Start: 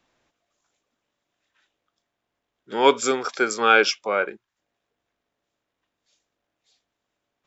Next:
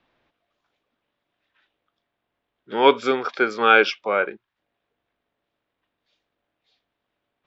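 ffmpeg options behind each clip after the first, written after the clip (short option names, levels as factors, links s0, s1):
-af "lowpass=f=4000:w=0.5412,lowpass=f=4000:w=1.3066,volume=1.19"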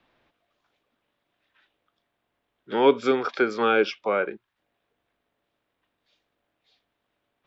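-filter_complex "[0:a]acrossover=split=460[s0][s1];[s1]acompressor=threshold=0.0398:ratio=2.5[s2];[s0][s2]amix=inputs=2:normalize=0,volume=1.19"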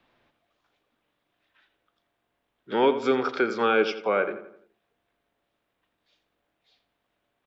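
-filter_complex "[0:a]alimiter=limit=0.266:level=0:latency=1:release=297,asplit=2[s0][s1];[s1]adelay=85,lowpass=f=2600:p=1,volume=0.299,asplit=2[s2][s3];[s3]adelay=85,lowpass=f=2600:p=1,volume=0.46,asplit=2[s4][s5];[s5]adelay=85,lowpass=f=2600:p=1,volume=0.46,asplit=2[s6][s7];[s7]adelay=85,lowpass=f=2600:p=1,volume=0.46,asplit=2[s8][s9];[s9]adelay=85,lowpass=f=2600:p=1,volume=0.46[s10];[s2][s4][s6][s8][s10]amix=inputs=5:normalize=0[s11];[s0][s11]amix=inputs=2:normalize=0"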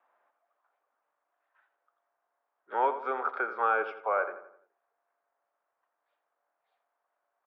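-af "asuperpass=centerf=970:order=4:qfactor=1.1"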